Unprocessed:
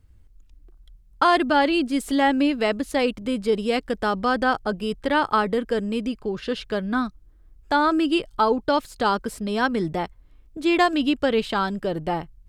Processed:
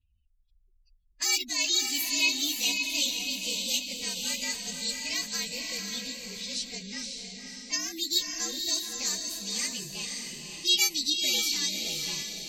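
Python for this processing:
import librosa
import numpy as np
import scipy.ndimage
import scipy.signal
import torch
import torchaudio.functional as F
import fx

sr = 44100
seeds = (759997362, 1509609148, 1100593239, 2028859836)

p1 = fx.partial_stretch(x, sr, pct=114)
p2 = librosa.effects.preemphasis(p1, coef=0.8, zi=[0.0])
p3 = fx.env_lowpass(p2, sr, base_hz=2400.0, full_db=-32.0)
p4 = fx.curve_eq(p3, sr, hz=(110.0, 1500.0, 2600.0), db=(0, -14, 13))
p5 = p4 + fx.echo_diffused(p4, sr, ms=545, feedback_pct=44, wet_db=-3.5, dry=0)
y = fx.spec_gate(p5, sr, threshold_db=-30, keep='strong')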